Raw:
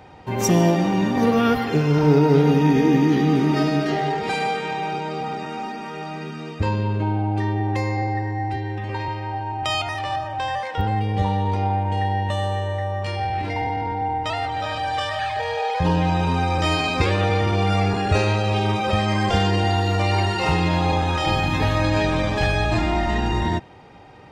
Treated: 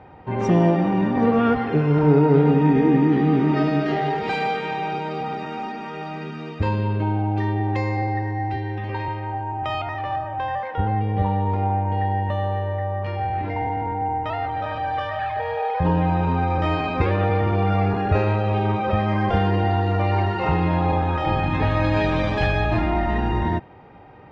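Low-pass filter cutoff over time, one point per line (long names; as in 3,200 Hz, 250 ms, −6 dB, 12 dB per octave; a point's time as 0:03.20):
0:03.15 2,000 Hz
0:04.24 3,800 Hz
0:08.82 3,800 Hz
0:09.46 1,800 Hz
0:21.29 1,800 Hz
0:22.28 4,000 Hz
0:22.90 2,100 Hz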